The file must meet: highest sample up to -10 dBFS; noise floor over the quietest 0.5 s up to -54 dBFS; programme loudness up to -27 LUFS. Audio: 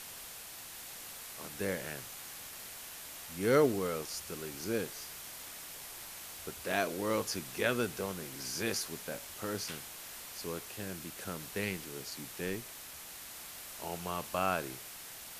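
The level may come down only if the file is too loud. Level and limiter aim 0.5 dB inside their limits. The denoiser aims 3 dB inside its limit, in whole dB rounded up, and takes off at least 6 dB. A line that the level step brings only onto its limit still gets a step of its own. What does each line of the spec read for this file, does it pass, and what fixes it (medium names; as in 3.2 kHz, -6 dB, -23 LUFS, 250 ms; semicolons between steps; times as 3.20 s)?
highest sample -15.0 dBFS: pass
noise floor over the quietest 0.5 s -48 dBFS: fail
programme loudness -37.5 LUFS: pass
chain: noise reduction 9 dB, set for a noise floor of -48 dBFS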